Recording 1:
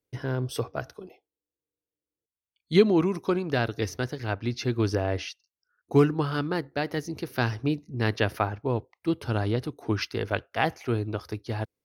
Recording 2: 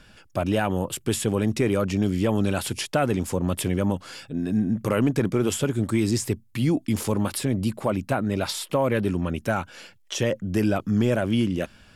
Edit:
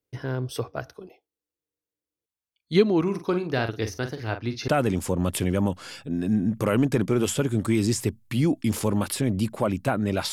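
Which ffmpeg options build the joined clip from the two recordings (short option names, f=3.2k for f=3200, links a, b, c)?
-filter_complex "[0:a]asplit=3[a][b][c];[a]afade=t=out:st=3.05:d=0.02[d];[b]asplit=2[e][f];[f]adelay=45,volume=-9dB[g];[e][g]amix=inputs=2:normalize=0,afade=t=in:st=3.05:d=0.02,afade=t=out:st=4.68:d=0.02[h];[c]afade=t=in:st=4.68:d=0.02[i];[d][h][i]amix=inputs=3:normalize=0,apad=whole_dur=10.32,atrim=end=10.32,atrim=end=4.682[j];[1:a]atrim=start=2.918:end=8.56[k];[j][k]acrossfade=d=0.004:c1=hsin:c2=hsin"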